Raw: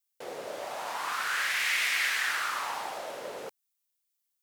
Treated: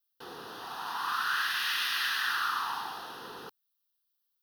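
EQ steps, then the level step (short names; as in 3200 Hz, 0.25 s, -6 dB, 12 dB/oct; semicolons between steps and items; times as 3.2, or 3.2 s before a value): fixed phaser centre 2200 Hz, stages 6; +2.5 dB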